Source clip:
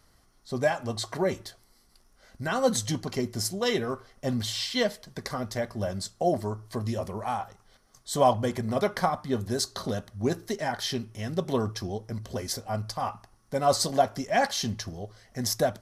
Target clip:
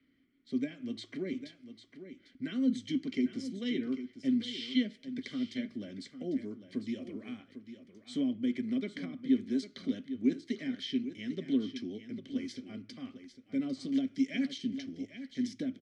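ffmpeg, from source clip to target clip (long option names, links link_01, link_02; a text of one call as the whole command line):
ffmpeg -i in.wav -filter_complex "[0:a]asettb=1/sr,asplit=3[link_01][link_02][link_03];[link_01]atrim=end=13.924[link_04];[link_02]atrim=start=13.92:end=14.58,asetpts=PTS-STARTPTS,afade=type=in:duration=0.004:curve=qsin,afade=type=out:start_time=0.656:duration=0.004:curve=qsin,highshelf=frequency=2300:gain=10.5[link_05];[link_03]atrim=start=14.576[link_06];[link_04][link_05]acrossfade=duration=0.004:curve1=hsin:curve2=qsin[link_07];[link_07][link_06]acrossfade=duration=0.004:curve1=qsin:curve2=hsin,acrossover=split=180|3400[link_08][link_09][link_10];[link_08]acompressor=threshold=-43dB:ratio=6[link_11];[link_10]agate=range=-33dB:threshold=-58dB:ratio=3:detection=peak[link_12];[link_11][link_09][link_12]amix=inputs=3:normalize=0,acrossover=split=410[link_13][link_14];[link_14]acompressor=threshold=-31dB:ratio=10[link_15];[link_13][link_15]amix=inputs=2:normalize=0,asplit=3[link_16][link_17][link_18];[link_16]bandpass=frequency=270:width_type=q:width=8,volume=0dB[link_19];[link_17]bandpass=frequency=2290:width_type=q:width=8,volume=-6dB[link_20];[link_18]bandpass=frequency=3010:width_type=q:width=8,volume=-9dB[link_21];[link_19][link_20][link_21]amix=inputs=3:normalize=0,asplit=2[link_22][link_23];[link_23]aecho=0:1:800:0.266[link_24];[link_22][link_24]amix=inputs=2:normalize=0,aresample=22050,aresample=44100,volume=8dB" out.wav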